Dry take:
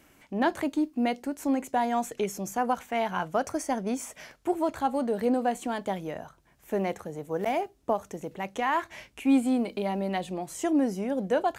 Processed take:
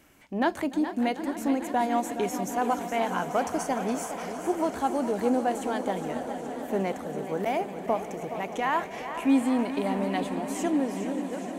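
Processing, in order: ending faded out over 0.97 s; swelling echo 0.148 s, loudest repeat 5, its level -17.5 dB; warbling echo 0.417 s, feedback 63%, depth 108 cents, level -11 dB

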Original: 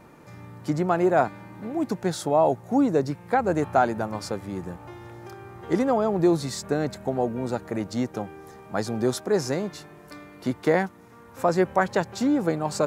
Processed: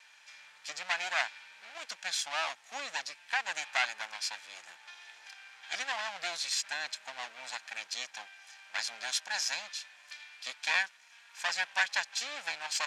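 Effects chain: minimum comb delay 1.2 ms; Butterworth band-pass 4000 Hz, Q 0.8; gain +6 dB

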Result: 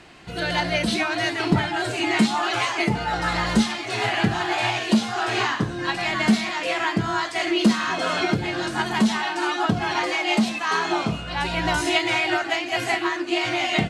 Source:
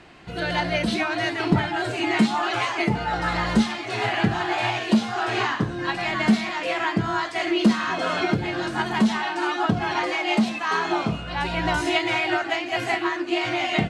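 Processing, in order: high shelf 4300 Hz +8 dB

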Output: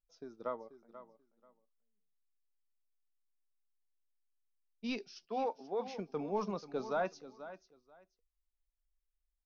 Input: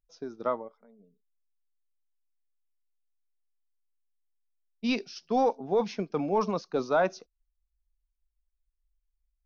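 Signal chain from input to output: 5.25–5.88 BPF 300–4100 Hz; feedback echo 0.486 s, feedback 20%, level -14 dB; flange 0.23 Hz, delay 1.2 ms, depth 3.9 ms, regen +82%; gain -5 dB

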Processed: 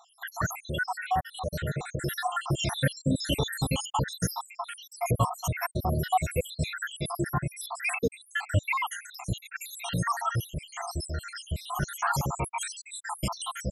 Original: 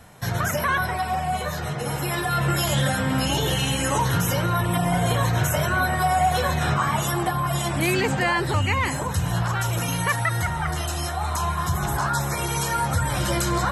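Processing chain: random spectral dropouts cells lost 81%

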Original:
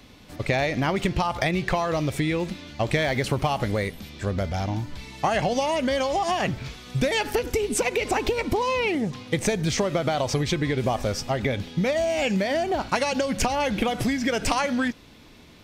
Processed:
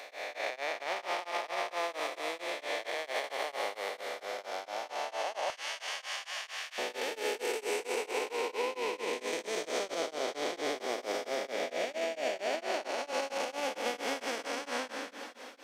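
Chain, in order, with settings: time blur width 0.692 s; HPF 520 Hz 24 dB/oct, from 5.5 s 1300 Hz, from 6.78 s 370 Hz; limiter -25.5 dBFS, peak gain reduction 6.5 dB; transient shaper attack +2 dB, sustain -4 dB; diffused feedback echo 0.546 s, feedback 51%, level -13 dB; beating tremolo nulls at 4.4 Hz; gain +2.5 dB

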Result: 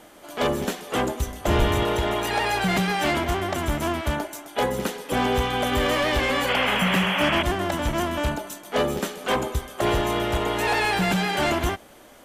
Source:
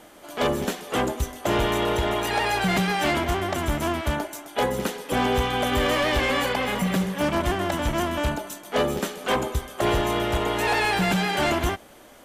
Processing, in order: 1.25–1.83 octaver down 2 oct, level +4 dB; 6.48–7.43 painted sound noise 510–3400 Hz -25 dBFS

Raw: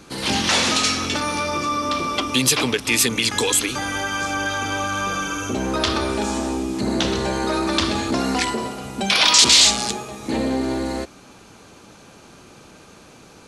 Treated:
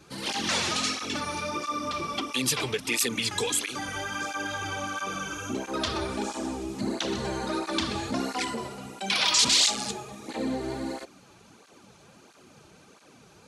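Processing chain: tape flanging out of phase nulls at 1.5 Hz, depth 4.4 ms; gain -5.5 dB

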